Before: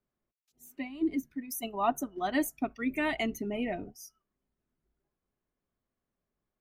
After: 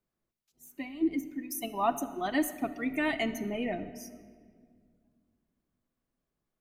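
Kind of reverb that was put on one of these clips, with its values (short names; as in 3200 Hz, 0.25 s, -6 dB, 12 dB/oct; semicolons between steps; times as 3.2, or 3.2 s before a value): shoebox room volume 3600 m³, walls mixed, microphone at 0.69 m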